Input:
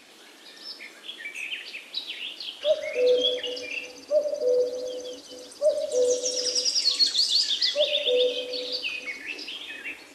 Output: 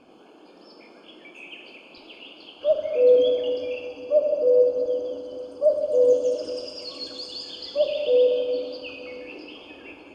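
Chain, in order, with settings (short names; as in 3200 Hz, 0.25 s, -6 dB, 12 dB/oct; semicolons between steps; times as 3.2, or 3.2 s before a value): running mean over 23 samples; plate-style reverb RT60 2.4 s, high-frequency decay 0.95×, DRR 4 dB; gain +4.5 dB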